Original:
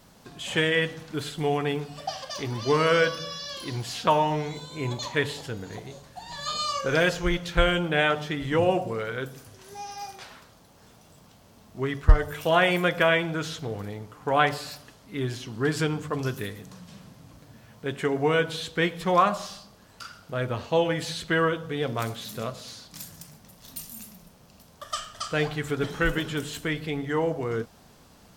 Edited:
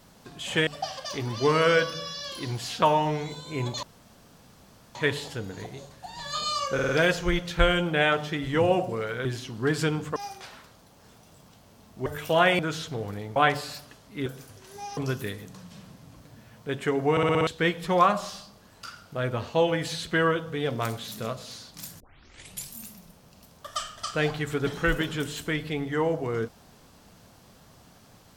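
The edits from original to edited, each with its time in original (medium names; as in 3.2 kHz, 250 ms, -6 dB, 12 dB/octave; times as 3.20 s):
0.67–1.92 s: delete
5.08 s: insert room tone 1.12 s
6.87 s: stutter 0.05 s, 4 plays
9.23–9.94 s: swap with 15.23–16.14 s
11.84–12.22 s: delete
12.75–13.30 s: delete
14.07–14.33 s: delete
18.28 s: stutter in place 0.06 s, 6 plays
23.17 s: tape start 0.75 s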